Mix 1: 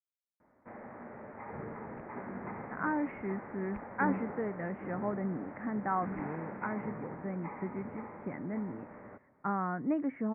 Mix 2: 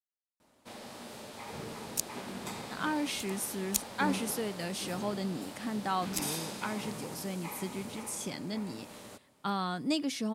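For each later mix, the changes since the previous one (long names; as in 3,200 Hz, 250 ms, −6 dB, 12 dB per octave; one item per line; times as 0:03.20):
master: remove Butterworth low-pass 2,100 Hz 72 dB per octave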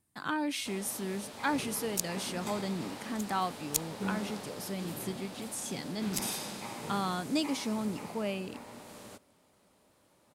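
speech: entry −2.55 s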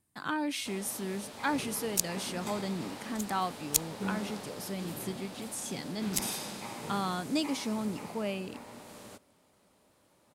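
second sound +4.0 dB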